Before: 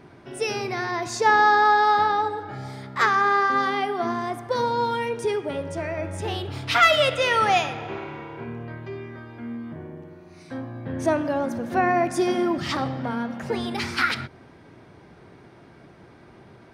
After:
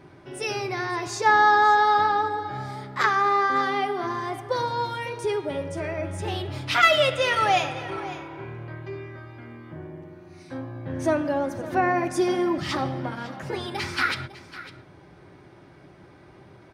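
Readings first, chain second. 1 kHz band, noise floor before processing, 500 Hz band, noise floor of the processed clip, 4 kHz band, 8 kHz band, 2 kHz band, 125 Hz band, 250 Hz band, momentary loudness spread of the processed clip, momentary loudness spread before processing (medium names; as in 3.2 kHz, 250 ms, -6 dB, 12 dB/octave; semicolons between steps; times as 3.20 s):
-1.0 dB, -50 dBFS, -1.5 dB, -50 dBFS, -1.0 dB, -1.0 dB, -1.0 dB, 0.0 dB, -2.0 dB, 21 LU, 19 LU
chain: comb of notches 230 Hz; delay 553 ms -16 dB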